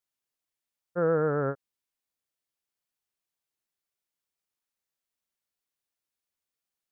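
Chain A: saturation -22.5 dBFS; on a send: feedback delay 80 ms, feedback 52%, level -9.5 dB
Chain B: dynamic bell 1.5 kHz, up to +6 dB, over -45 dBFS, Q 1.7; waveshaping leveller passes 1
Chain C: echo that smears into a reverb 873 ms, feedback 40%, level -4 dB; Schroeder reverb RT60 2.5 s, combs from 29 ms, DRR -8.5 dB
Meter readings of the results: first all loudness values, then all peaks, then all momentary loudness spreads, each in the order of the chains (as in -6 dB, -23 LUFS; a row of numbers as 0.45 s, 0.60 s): -30.0 LUFS, -25.0 LUFS, -23.5 LUFS; -19.5 dBFS, -14.5 dBFS, -6.5 dBFS; 13 LU, 12 LU, 21 LU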